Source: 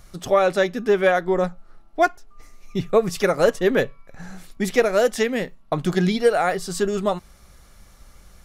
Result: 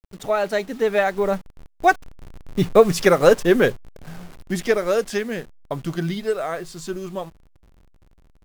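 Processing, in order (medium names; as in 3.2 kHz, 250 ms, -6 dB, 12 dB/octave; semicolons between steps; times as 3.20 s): send-on-delta sampling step -38 dBFS; Doppler pass-by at 2.75 s, 29 m/s, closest 29 m; trim +5 dB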